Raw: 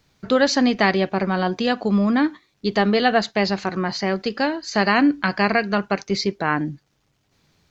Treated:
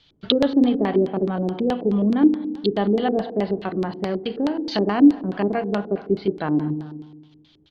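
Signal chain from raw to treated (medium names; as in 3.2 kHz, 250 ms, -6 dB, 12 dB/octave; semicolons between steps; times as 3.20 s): low-pass that closes with the level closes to 870 Hz, closed at -18.5 dBFS; peaking EQ 3.2 kHz +14 dB 0.38 oct; speakerphone echo 380 ms, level -21 dB; FDN reverb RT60 1.2 s, low-frequency decay 1.25×, high-frequency decay 0.7×, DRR 9 dB; LFO low-pass square 4.7 Hz 380–4100 Hz; trim -2.5 dB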